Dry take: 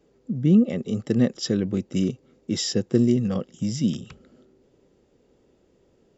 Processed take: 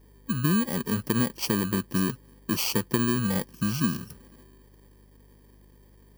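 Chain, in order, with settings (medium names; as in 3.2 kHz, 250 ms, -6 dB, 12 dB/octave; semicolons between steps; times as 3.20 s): bit-reversed sample order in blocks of 32 samples; compression 10:1, threshold -20 dBFS, peak gain reduction 8.5 dB; hum 50 Hz, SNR 27 dB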